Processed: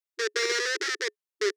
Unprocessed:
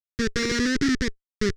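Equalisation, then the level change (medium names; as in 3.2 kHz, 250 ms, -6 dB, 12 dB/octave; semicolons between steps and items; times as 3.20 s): brick-wall FIR high-pass 340 Hz; 0.0 dB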